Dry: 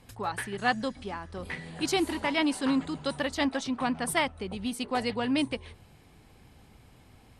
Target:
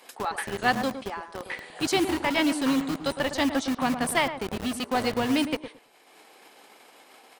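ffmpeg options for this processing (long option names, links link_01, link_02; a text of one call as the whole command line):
ffmpeg -i in.wav -filter_complex "[0:a]highpass=72,agate=range=-33dB:threshold=-50dB:ratio=3:detection=peak,acrossover=split=360[link_01][link_02];[link_01]acrusher=bits=5:mix=0:aa=0.000001[link_03];[link_02]acompressor=mode=upward:threshold=-42dB:ratio=2.5[link_04];[link_03][link_04]amix=inputs=2:normalize=0,asplit=2[link_05][link_06];[link_06]adelay=110,lowpass=frequency=1200:poles=1,volume=-8.5dB,asplit=2[link_07][link_08];[link_08]adelay=110,lowpass=frequency=1200:poles=1,volume=0.2,asplit=2[link_09][link_10];[link_10]adelay=110,lowpass=frequency=1200:poles=1,volume=0.2[link_11];[link_05][link_07][link_09][link_11]amix=inputs=4:normalize=0,volume=2.5dB" out.wav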